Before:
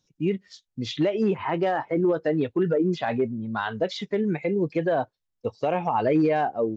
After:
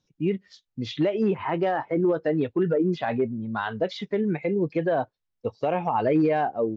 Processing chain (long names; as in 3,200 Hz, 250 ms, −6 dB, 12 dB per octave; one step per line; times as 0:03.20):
high-frequency loss of the air 100 metres